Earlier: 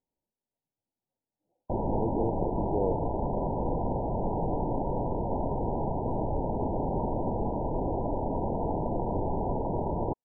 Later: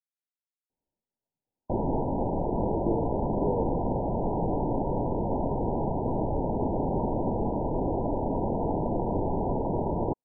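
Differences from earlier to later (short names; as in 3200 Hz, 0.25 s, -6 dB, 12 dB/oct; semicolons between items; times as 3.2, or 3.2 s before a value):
speech: entry +0.70 s; background: add bell 270 Hz +3.5 dB 2.1 oct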